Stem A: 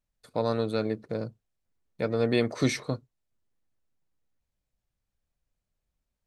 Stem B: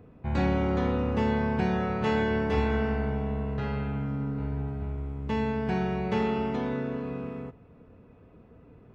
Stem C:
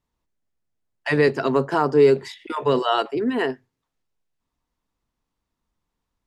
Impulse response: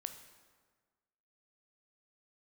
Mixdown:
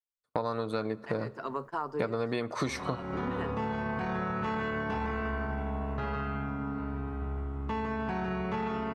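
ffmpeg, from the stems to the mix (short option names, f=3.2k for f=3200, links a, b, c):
-filter_complex "[0:a]dynaudnorm=f=140:g=5:m=9dB,volume=-1dB,asplit=2[a][b];[b]volume=-11dB[c];[1:a]alimiter=limit=-23dB:level=0:latency=1:release=17,adelay=2400,volume=-3dB,asplit=2[d][e];[e]volume=-5.5dB[f];[2:a]volume=-18.5dB,asplit=2[g][h];[h]volume=-15dB[i];[3:a]atrim=start_sample=2205[j];[c][i]amix=inputs=2:normalize=0[k];[k][j]afir=irnorm=-1:irlink=0[l];[f]aecho=0:1:156:1[m];[a][d][g][l][m]amix=inputs=5:normalize=0,agate=range=-35dB:threshold=-43dB:ratio=16:detection=peak,equalizer=f=1.1k:t=o:w=0.92:g=10.5,acompressor=threshold=-28dB:ratio=10"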